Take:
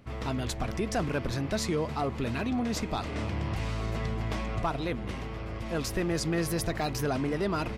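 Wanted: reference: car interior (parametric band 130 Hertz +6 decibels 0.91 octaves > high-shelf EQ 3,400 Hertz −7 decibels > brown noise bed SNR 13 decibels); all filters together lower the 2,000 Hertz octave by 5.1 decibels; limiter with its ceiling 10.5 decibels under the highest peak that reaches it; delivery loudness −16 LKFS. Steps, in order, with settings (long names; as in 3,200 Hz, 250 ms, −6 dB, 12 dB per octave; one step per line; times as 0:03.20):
parametric band 2,000 Hz −4.5 dB
brickwall limiter −28 dBFS
parametric band 130 Hz +6 dB 0.91 octaves
high-shelf EQ 3,400 Hz −7 dB
brown noise bed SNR 13 dB
level +19 dB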